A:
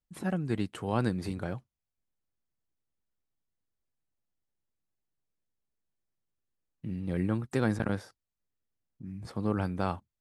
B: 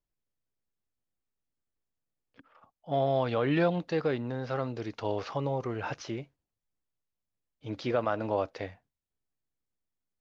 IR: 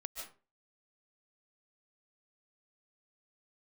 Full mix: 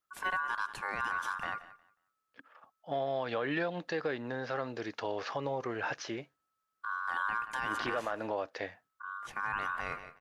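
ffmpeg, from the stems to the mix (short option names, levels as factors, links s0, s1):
-filter_complex "[0:a]aeval=exprs='val(0)*sin(2*PI*1300*n/s)':c=same,volume=1.12,asplit=3[s0][s1][s2];[s1]volume=0.133[s3];[s2]volume=0.133[s4];[1:a]highpass=f=410:p=1,equalizer=f=1700:w=6.1:g=8,acompressor=threshold=0.0282:ratio=6,volume=1.19[s5];[2:a]atrim=start_sample=2205[s6];[s3][s6]afir=irnorm=-1:irlink=0[s7];[s4]aecho=0:1:180|360|540:1|0.2|0.04[s8];[s0][s5][s7][s8]amix=inputs=4:normalize=0,alimiter=limit=0.0708:level=0:latency=1:release=11"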